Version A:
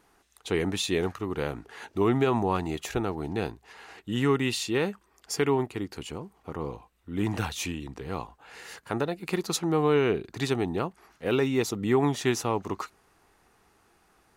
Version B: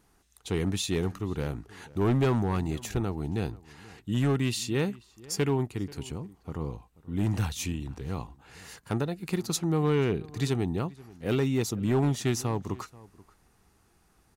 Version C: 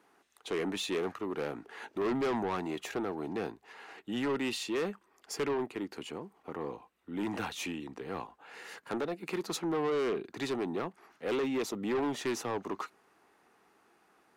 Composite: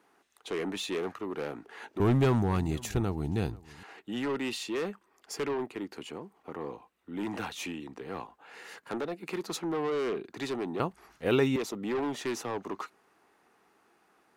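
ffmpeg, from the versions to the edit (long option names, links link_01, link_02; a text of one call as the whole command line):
ffmpeg -i take0.wav -i take1.wav -i take2.wav -filter_complex "[2:a]asplit=3[link_01][link_02][link_03];[link_01]atrim=end=2.002[link_04];[1:a]atrim=start=1.998:end=3.832[link_05];[link_02]atrim=start=3.828:end=10.802[link_06];[0:a]atrim=start=10.798:end=11.562[link_07];[link_03]atrim=start=11.558[link_08];[link_04][link_05]acrossfade=duration=0.004:curve1=hsin:curve2=hsin[link_09];[link_09][link_06]acrossfade=duration=0.004:curve1=hsin:curve2=hsin[link_10];[link_10][link_07]acrossfade=duration=0.004:curve1=hsin:curve2=hsin[link_11];[link_11][link_08]acrossfade=duration=0.004:curve1=hsin:curve2=hsin" out.wav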